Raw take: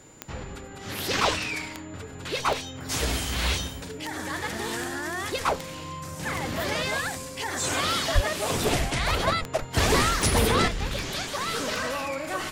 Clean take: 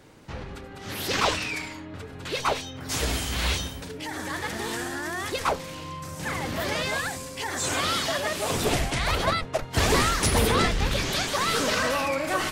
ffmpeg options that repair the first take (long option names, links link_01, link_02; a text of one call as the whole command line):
ffmpeg -i in.wav -filter_complex "[0:a]adeclick=threshold=4,bandreject=frequency=7100:width=30,asplit=3[link_01][link_02][link_03];[link_01]afade=type=out:start_time=8.14:duration=0.02[link_04];[link_02]highpass=frequency=140:width=0.5412,highpass=frequency=140:width=1.3066,afade=type=in:start_time=8.14:duration=0.02,afade=type=out:start_time=8.26:duration=0.02[link_05];[link_03]afade=type=in:start_time=8.26:duration=0.02[link_06];[link_04][link_05][link_06]amix=inputs=3:normalize=0,asetnsamples=nb_out_samples=441:pad=0,asendcmd='10.68 volume volume 4.5dB',volume=0dB" out.wav